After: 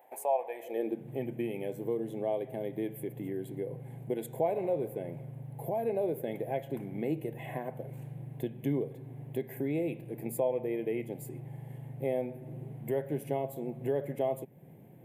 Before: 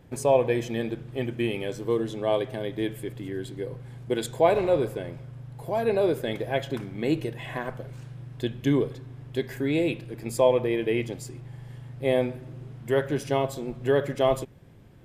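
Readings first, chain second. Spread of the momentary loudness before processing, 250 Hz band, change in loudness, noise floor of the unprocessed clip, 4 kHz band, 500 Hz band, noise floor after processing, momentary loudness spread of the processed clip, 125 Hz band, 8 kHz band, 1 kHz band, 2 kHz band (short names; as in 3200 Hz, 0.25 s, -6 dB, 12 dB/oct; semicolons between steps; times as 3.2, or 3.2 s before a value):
18 LU, -7.0 dB, -8.0 dB, -45 dBFS, under -15 dB, -7.5 dB, -49 dBFS, 11 LU, -7.0 dB, -9.0 dB, -7.5 dB, -14.0 dB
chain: low shelf 200 Hz -8.5 dB; compressor 2:1, threshold -38 dBFS, peak gain reduction 12.5 dB; EQ curve 230 Hz 0 dB, 800 Hz +3 dB, 1300 Hz -16 dB, 2100 Hz -3 dB, 5200 Hz -21 dB, 13000 Hz +8 dB; high-pass sweep 800 Hz -> 150 Hz, 0.57–1.09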